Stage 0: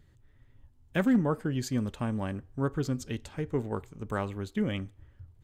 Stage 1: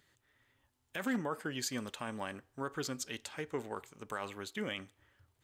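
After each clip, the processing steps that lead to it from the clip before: high-pass 1.3 kHz 6 dB/octave; peak limiter -29.5 dBFS, peak gain reduction 10.5 dB; trim +4.5 dB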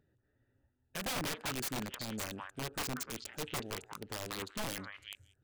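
local Wiener filter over 41 samples; repeats whose band climbs or falls 185 ms, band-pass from 1.3 kHz, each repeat 1.4 oct, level -3 dB; integer overflow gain 34.5 dB; trim +3.5 dB

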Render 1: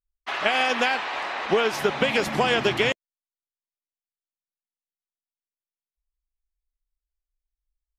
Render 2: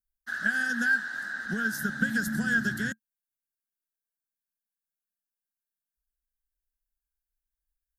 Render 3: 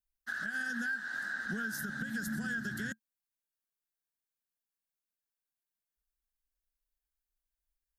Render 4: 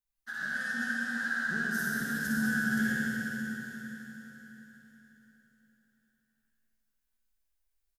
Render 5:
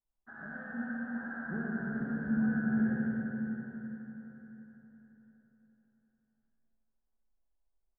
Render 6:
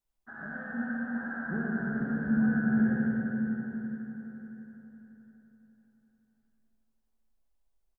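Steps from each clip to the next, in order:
FFT filter 140 Hz 0 dB, 220 Hz +9 dB, 380 Hz -16 dB, 1.1 kHz -22 dB, 1.6 kHz +13 dB, 2.3 kHz -29 dB, 3.8 kHz -7 dB, 12 kHz +11 dB; trim -5 dB
compression, threshold -29 dBFS, peak gain reduction 9 dB; peak limiter -26 dBFS, peak gain reduction 6.5 dB; trim -2 dB
feedback comb 75 Hz, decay 0.16 s, harmonics all, mix 80%; feedback delay 498 ms, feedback 25%, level -14 dB; reverberation RT60 4.2 s, pre-delay 46 ms, DRR -5.5 dB; trim +2.5 dB
four-pole ladder low-pass 1.1 kHz, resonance 25%; trim +7.5 dB
delay 931 ms -21 dB; trim +4 dB

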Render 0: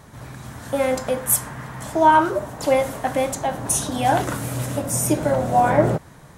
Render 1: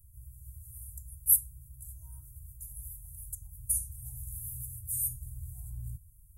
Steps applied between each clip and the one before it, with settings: inverse Chebyshev band-stop 240–4100 Hz, stop band 60 dB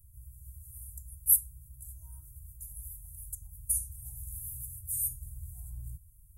dynamic bell 120 Hz, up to -6 dB, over -58 dBFS, Q 2.7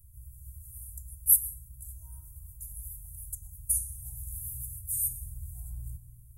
reverberation RT60 1.8 s, pre-delay 75 ms, DRR 11 dB; trim +2 dB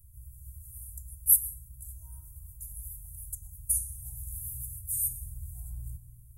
no audible change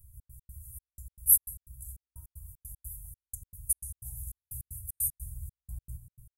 trance gate "xx.x.xxx..x." 153 bpm -60 dB

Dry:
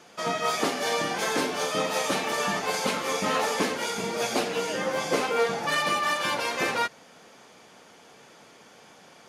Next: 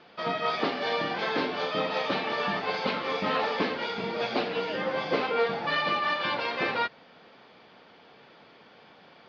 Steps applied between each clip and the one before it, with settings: steep low-pass 4.6 kHz 48 dB/octave; trim -1.5 dB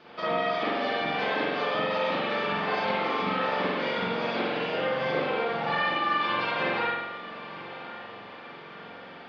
compression, threshold -32 dBFS, peak gain reduction 10.5 dB; echo that smears into a reverb 1104 ms, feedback 48%, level -14.5 dB; spring tank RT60 1 s, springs 44 ms, chirp 70 ms, DRR -7 dB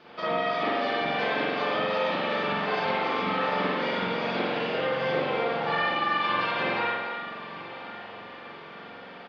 delay 286 ms -8.5 dB

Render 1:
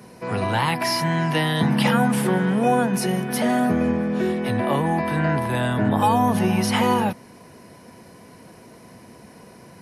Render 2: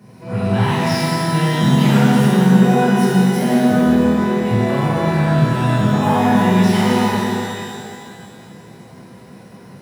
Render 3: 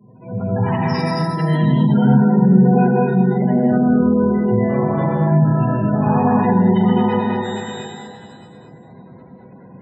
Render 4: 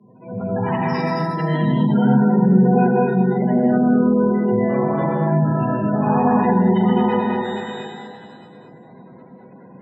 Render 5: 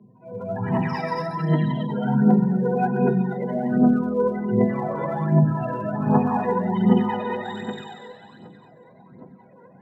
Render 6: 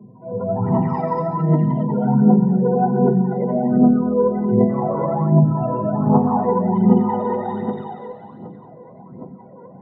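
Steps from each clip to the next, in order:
median filter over 3 samples; peaking EQ 150 Hz +9.5 dB 1.4 oct; pitch-shifted reverb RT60 2.2 s, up +12 st, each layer -8 dB, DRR -9 dB; trim -8.5 dB
spectral gate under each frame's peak -20 dB strong; gated-style reverb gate 260 ms rising, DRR 0 dB; trim -3.5 dB
three-band isolator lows -15 dB, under 150 Hz, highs -14 dB, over 4.3 kHz
phaser 1.3 Hz, delay 2.2 ms, feedback 65%; trim -7 dB
in parallel at +2 dB: compression, threshold -28 dBFS, peak gain reduction 16 dB; on the sum: Savitzky-Golay filter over 65 samples; trim +1.5 dB

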